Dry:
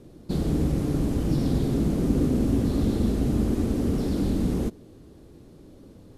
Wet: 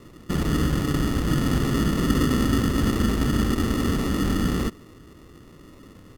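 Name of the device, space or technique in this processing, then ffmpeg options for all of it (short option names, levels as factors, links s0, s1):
crushed at another speed: -af "asetrate=35280,aresample=44100,acrusher=samples=35:mix=1:aa=0.000001,asetrate=55125,aresample=44100,volume=1.19"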